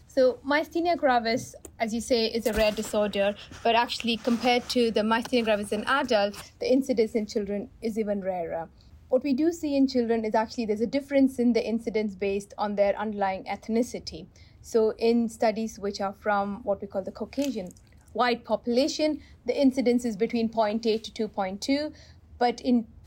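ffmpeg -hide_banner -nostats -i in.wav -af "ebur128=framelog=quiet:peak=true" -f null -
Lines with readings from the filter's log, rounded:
Integrated loudness:
  I:         -26.6 LUFS
  Threshold: -36.9 LUFS
Loudness range:
  LRA:         3.5 LU
  Threshold: -46.9 LUFS
  LRA low:   -28.8 LUFS
  LRA high:  -25.3 LUFS
True peak:
  Peak:      -12.7 dBFS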